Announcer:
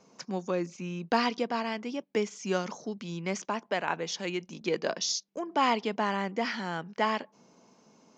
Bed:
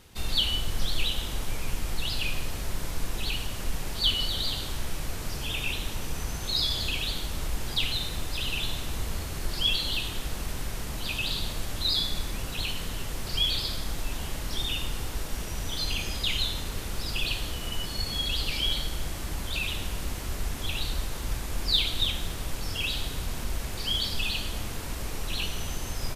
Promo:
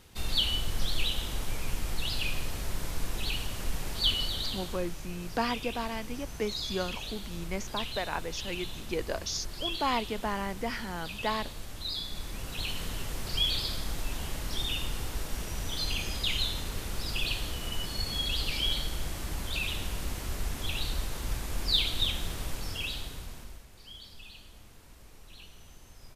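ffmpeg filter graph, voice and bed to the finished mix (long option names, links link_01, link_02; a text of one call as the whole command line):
ffmpeg -i stem1.wav -i stem2.wav -filter_complex "[0:a]adelay=4250,volume=-3.5dB[link_01];[1:a]volume=5dB,afade=type=out:start_time=4.09:duration=0.89:silence=0.446684,afade=type=in:start_time=12.04:duration=0.79:silence=0.446684,afade=type=out:start_time=22.43:duration=1.22:silence=0.133352[link_02];[link_01][link_02]amix=inputs=2:normalize=0" out.wav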